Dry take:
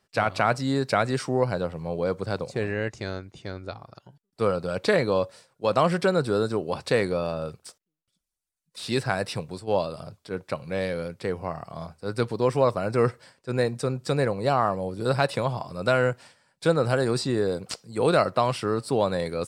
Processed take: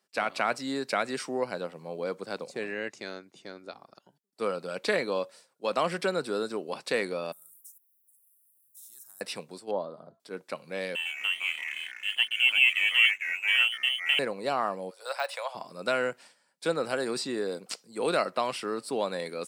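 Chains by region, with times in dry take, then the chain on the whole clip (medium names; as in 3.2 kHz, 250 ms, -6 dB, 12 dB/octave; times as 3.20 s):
7.32–9.21 s: inverse Chebyshev band-stop 230–5000 Hz, stop band 50 dB + tilt EQ +2 dB/octave + spectrum-flattening compressor 4:1
9.71–10.20 s: boxcar filter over 17 samples + de-hum 335.8 Hz, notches 31
10.95–14.19 s: frequency inversion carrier 3.2 kHz + hysteresis with a dead band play -36 dBFS + ever faster or slower copies 108 ms, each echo -3 st, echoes 2, each echo -6 dB
14.90–15.55 s: steep high-pass 540 Hz 48 dB/octave + de-esser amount 85%
whole clip: dynamic bell 2.4 kHz, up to +5 dB, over -43 dBFS, Q 1.2; high-pass 200 Hz 24 dB/octave; treble shelf 5.6 kHz +6.5 dB; trim -6.5 dB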